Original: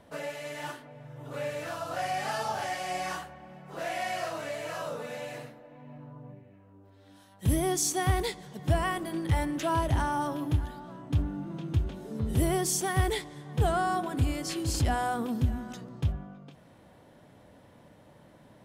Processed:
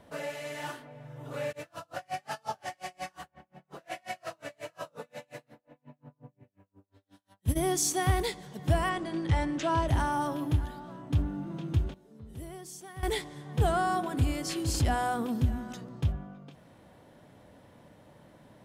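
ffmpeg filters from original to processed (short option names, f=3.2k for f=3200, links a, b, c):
-filter_complex "[0:a]asplit=3[a][b][c];[a]afade=t=out:st=1.51:d=0.02[d];[b]aeval=exprs='val(0)*pow(10,-37*(0.5-0.5*cos(2*PI*5.6*n/s))/20)':c=same,afade=t=in:st=1.51:d=0.02,afade=t=out:st=7.55:d=0.02[e];[c]afade=t=in:st=7.55:d=0.02[f];[d][e][f]amix=inputs=3:normalize=0,asettb=1/sr,asplit=3[g][h][i];[g]atrim=end=8.894[j];[h]atrim=start=8.89:end=9.88,asetpts=PTS-STARTPTS,afade=t=in:d=0.004:c=qsin,afade=t=out:st=0.986:d=0.004:c=qsin,lowpass=f=7.6k:w=0.5412,lowpass=f=7.6k:w=1.3066[k];[i]atrim=start=9.876[l];[j][k]acrossfade=d=0.004:c1=hsin:c2=qsin[m];[m][l]acrossfade=d=0.004:c1=qsin:c2=hsin,asplit=3[n][o][p];[n]atrim=end=11.94,asetpts=PTS-STARTPTS,afade=t=out:st=11.79:d=0.15:c=log:silence=0.149624[q];[o]atrim=start=11.94:end=13.03,asetpts=PTS-STARTPTS,volume=-16.5dB[r];[p]atrim=start=13.03,asetpts=PTS-STARTPTS,afade=t=in:d=0.15:c=log:silence=0.149624[s];[q][r][s]concat=n=3:v=0:a=1"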